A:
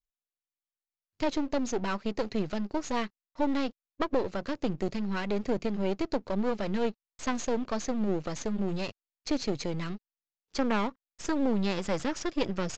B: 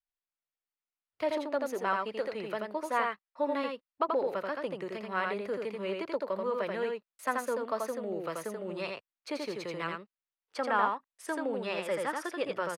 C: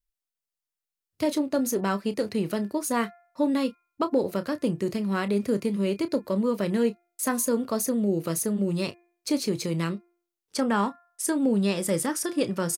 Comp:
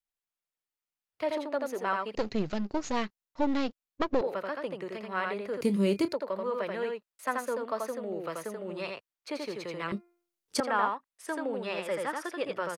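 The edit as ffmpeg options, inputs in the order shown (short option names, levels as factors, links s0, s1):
-filter_complex "[2:a]asplit=2[s0][s1];[1:a]asplit=4[s2][s3][s4][s5];[s2]atrim=end=2.152[s6];[0:a]atrim=start=2.148:end=4.212[s7];[s3]atrim=start=4.208:end=5.612[s8];[s0]atrim=start=5.608:end=6.132[s9];[s4]atrim=start=6.128:end=9.922[s10];[s1]atrim=start=9.918:end=10.602[s11];[s5]atrim=start=10.598[s12];[s6][s7]acrossfade=d=0.004:c1=hsin:c2=hsin[s13];[s13][s8]acrossfade=d=0.004:c1=hsin:c2=hsin[s14];[s14][s9]acrossfade=d=0.004:c1=hsin:c2=hsin[s15];[s15][s10]acrossfade=d=0.004:c1=hsin:c2=hsin[s16];[s16][s11]acrossfade=d=0.004:c1=hsin:c2=hsin[s17];[s17][s12]acrossfade=d=0.004:c1=hsin:c2=hsin"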